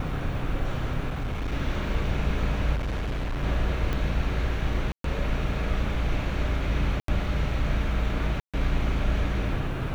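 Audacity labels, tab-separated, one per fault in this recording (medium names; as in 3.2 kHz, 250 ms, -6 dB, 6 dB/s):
1.090000	1.530000	clipped -25.5 dBFS
2.750000	3.440000	clipped -25.5 dBFS
3.930000	3.930000	pop -16 dBFS
4.920000	5.040000	dropout 123 ms
7.000000	7.080000	dropout 83 ms
8.400000	8.540000	dropout 136 ms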